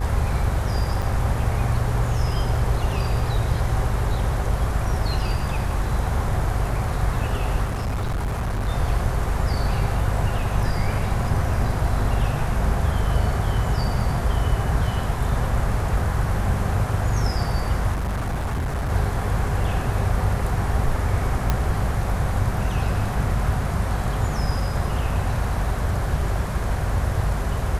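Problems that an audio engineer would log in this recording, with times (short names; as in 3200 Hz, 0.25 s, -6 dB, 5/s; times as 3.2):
buzz 50 Hz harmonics 32 -27 dBFS
1.02–1.03 gap 6.2 ms
7.64–8.69 clipped -21.5 dBFS
17.92–18.91 clipped -21.5 dBFS
21.5 pop -7 dBFS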